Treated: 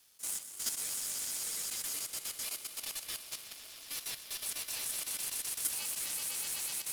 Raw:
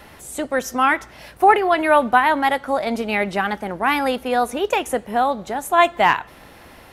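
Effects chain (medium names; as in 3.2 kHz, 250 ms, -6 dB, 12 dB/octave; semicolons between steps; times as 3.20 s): inverse Chebyshev high-pass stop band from 2.2 kHz, stop band 40 dB; on a send: echo with a slow build-up 124 ms, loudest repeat 5, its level -5 dB; on the sum: level held to a coarse grid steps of 10 dB; waveshaping leveller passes 2; dynamic bell 9.7 kHz, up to +5 dB, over -45 dBFS, Q 2; polarity switched at an audio rate 880 Hz; trim -7.5 dB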